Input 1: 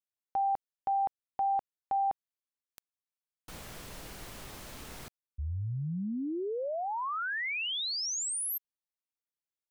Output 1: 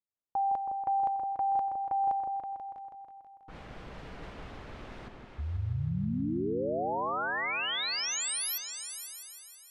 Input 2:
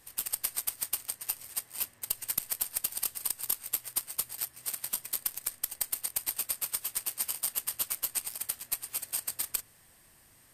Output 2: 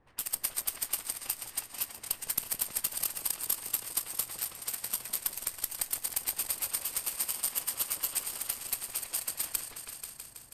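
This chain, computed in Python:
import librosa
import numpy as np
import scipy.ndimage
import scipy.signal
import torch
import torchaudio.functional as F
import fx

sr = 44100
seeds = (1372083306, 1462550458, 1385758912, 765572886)

y = fx.env_lowpass(x, sr, base_hz=1000.0, full_db=-32.5)
y = fx.echo_opening(y, sr, ms=162, hz=750, octaves=2, feedback_pct=70, wet_db=-3)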